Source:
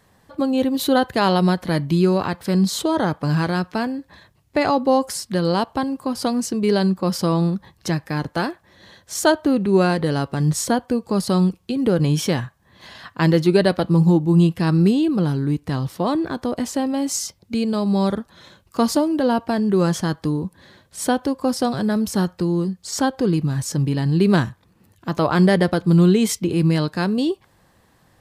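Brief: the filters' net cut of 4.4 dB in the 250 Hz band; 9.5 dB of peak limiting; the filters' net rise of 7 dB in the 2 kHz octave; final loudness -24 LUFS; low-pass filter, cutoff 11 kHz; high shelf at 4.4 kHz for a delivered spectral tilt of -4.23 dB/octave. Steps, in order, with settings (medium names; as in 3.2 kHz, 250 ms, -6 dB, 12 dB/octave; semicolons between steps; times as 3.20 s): low-pass 11 kHz; peaking EQ 250 Hz -7 dB; peaking EQ 2 kHz +8 dB; treble shelf 4.4 kHz +8.5 dB; trim -1.5 dB; peak limiter -12 dBFS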